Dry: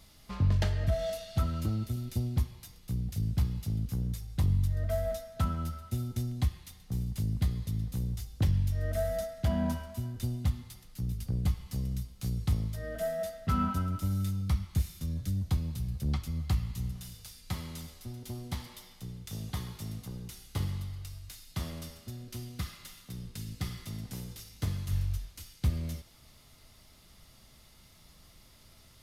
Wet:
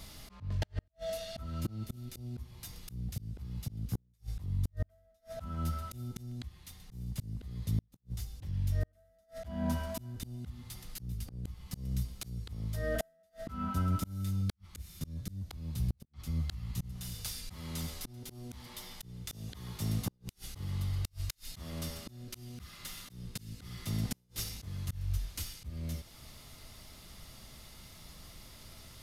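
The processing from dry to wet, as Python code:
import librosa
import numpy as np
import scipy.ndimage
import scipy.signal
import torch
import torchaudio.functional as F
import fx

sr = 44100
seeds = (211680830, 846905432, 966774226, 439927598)

y = fx.rider(x, sr, range_db=3, speed_s=0.5)
y = fx.auto_swell(y, sr, attack_ms=586.0)
y = fx.gate_flip(y, sr, shuts_db=-29.0, range_db=-41)
y = y * librosa.db_to_amplitude(7.5)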